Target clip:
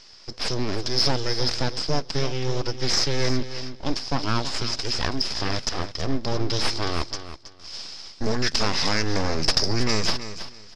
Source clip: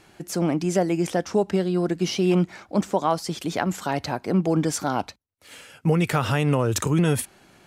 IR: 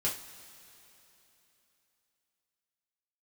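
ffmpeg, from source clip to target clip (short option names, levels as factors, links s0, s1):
-filter_complex "[0:a]highpass=44,highshelf=f=3100:g=9.5,aeval=exprs='abs(val(0))':c=same,lowpass=f=7200:t=q:w=9.7,asplit=2[s0][s1];[s1]asoftclip=type=tanh:threshold=0.141,volume=0.282[s2];[s0][s2]amix=inputs=2:normalize=0,asetrate=31443,aresample=44100,asplit=2[s3][s4];[s4]aecho=0:1:324|648|972:0.251|0.0502|0.01[s5];[s3][s5]amix=inputs=2:normalize=0,volume=0.708"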